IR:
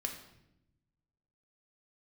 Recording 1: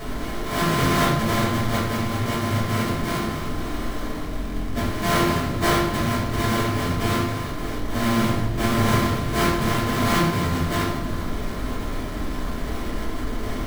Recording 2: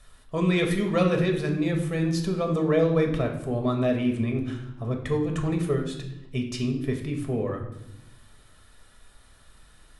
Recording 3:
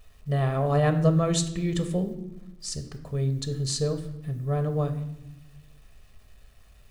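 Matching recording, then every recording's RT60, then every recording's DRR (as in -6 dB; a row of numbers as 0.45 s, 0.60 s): 2; 0.85 s, 0.85 s, no single decay rate; -7.5 dB, 2.0 dB, 7.0 dB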